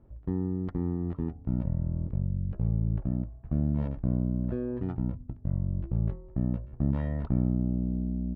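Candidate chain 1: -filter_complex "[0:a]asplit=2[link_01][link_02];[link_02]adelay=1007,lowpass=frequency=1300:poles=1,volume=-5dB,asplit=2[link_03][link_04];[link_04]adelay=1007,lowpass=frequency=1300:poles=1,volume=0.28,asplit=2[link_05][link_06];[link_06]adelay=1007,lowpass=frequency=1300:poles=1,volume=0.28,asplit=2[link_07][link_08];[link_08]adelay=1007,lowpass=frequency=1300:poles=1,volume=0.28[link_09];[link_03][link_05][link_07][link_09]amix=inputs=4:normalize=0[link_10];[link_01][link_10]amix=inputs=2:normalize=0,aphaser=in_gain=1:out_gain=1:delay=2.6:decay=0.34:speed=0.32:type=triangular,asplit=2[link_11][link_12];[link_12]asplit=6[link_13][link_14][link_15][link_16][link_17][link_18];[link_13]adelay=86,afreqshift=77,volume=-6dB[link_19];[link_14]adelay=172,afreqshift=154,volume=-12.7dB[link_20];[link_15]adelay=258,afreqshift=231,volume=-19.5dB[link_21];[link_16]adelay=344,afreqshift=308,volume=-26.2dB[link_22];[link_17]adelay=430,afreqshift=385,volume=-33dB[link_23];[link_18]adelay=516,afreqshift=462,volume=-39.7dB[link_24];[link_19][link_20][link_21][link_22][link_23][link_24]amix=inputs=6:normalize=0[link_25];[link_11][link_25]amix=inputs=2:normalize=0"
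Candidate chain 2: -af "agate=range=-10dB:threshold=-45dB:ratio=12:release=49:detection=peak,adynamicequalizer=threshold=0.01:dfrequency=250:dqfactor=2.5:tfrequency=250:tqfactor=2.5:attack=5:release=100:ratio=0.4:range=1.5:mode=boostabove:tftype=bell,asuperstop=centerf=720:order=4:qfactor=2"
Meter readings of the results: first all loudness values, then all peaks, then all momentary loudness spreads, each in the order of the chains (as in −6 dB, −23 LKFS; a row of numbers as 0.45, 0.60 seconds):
−27.5, −30.5 LKFS; −12.0, −13.5 dBFS; 6, 5 LU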